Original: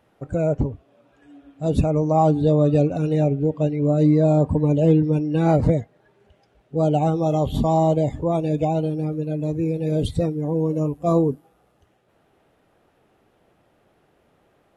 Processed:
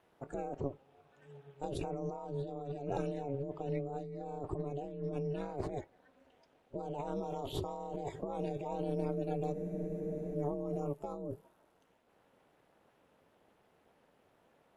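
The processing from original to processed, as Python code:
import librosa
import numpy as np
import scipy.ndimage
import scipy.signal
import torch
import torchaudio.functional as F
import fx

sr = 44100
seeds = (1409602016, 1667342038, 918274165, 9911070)

y = scipy.signal.sosfilt(scipy.signal.butter(4, 220.0, 'highpass', fs=sr, output='sos'), x)
y = fx.over_compress(y, sr, threshold_db=-27.0, ratio=-1.0)
y = y * np.sin(2.0 * np.pi * 140.0 * np.arange(len(y)) / sr)
y = fx.spec_freeze(y, sr, seeds[0], at_s=9.57, hold_s=0.77)
y = y * librosa.db_to_amplitude(-8.5)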